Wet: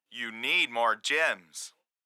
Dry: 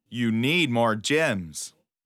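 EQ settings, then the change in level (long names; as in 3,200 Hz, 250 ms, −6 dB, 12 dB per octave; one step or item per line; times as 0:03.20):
high-pass filter 990 Hz 12 dB per octave
high-shelf EQ 3,200 Hz −11 dB
+3.5 dB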